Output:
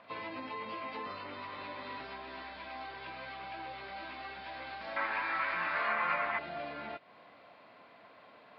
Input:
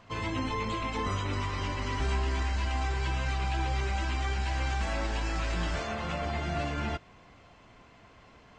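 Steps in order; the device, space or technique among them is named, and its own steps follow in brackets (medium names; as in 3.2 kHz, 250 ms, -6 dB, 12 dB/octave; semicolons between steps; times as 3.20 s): hearing aid with frequency lowering (knee-point frequency compression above 1.9 kHz 1.5:1; compression 2.5:1, threshold -39 dBFS, peak gain reduction 9 dB; cabinet simulation 300–6200 Hz, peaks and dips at 380 Hz -5 dB, 600 Hz +5 dB, 4.1 kHz +3 dB); 4.96–6.39 s: high-order bell 1.5 kHz +13.5 dB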